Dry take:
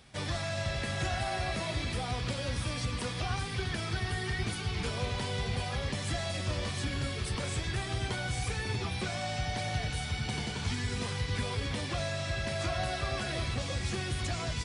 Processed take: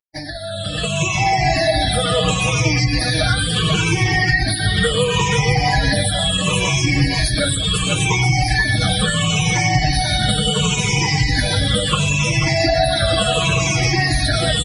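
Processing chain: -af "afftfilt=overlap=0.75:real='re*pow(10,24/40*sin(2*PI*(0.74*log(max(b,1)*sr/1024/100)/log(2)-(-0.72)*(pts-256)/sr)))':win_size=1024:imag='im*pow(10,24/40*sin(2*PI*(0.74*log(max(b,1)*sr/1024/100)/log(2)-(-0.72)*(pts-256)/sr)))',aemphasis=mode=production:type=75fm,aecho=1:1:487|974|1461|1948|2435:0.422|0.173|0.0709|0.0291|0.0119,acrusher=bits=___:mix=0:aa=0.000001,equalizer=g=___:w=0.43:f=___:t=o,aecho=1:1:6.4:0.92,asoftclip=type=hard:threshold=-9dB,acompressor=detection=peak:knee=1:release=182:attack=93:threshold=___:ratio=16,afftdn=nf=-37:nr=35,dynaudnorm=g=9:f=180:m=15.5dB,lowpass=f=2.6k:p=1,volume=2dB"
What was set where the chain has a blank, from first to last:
5, 3.5, 61, -31dB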